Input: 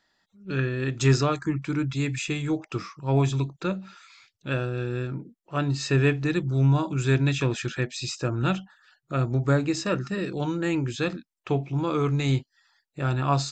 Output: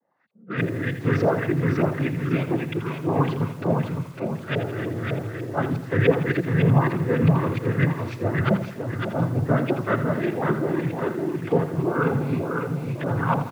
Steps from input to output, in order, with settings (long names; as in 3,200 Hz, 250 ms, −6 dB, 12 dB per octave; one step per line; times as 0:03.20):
auto-filter low-pass saw up 3.3 Hz 490–2,400 Hz
repeating echo 554 ms, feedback 38%, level −4 dB
cochlear-implant simulation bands 16
feedback echo at a low word length 82 ms, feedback 55%, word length 7 bits, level −11 dB